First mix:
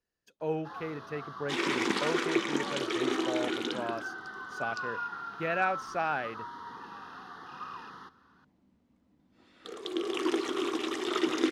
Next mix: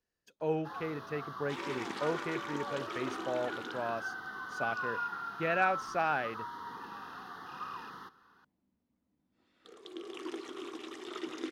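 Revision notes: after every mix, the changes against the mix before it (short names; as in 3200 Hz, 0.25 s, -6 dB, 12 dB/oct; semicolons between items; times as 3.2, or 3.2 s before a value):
first sound: remove LPF 8300 Hz 12 dB/oct; second sound -11.5 dB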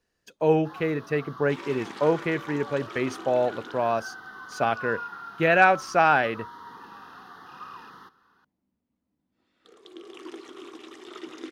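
speech +11.5 dB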